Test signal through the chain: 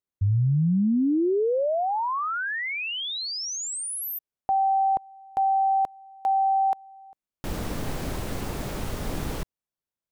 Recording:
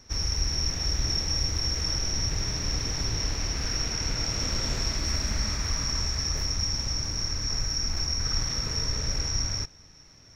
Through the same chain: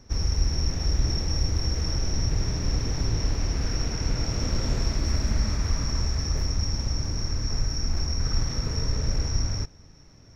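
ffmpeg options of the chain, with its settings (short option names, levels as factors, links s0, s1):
-af "tiltshelf=f=970:g=5.5"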